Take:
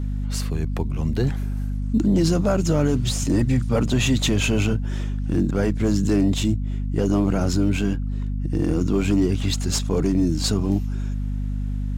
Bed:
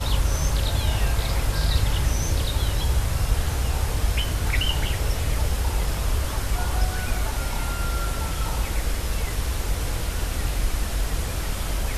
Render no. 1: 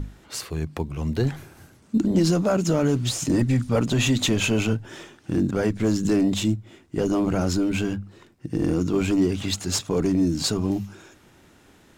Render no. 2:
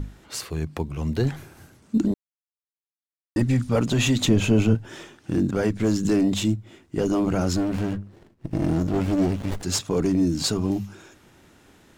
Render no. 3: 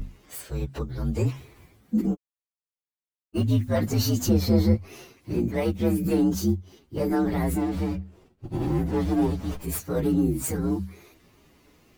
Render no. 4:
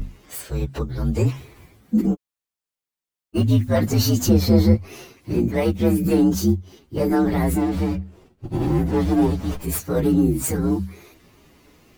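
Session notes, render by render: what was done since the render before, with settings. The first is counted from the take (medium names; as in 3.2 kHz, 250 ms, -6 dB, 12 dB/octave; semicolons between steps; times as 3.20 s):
hum notches 50/100/150/200/250 Hz
2.14–3.36 s: mute; 4.25–4.75 s: tilt shelf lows +5.5 dB, about 690 Hz; 7.56–9.63 s: sliding maximum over 33 samples
frequency axis rescaled in octaves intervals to 121%
trim +5 dB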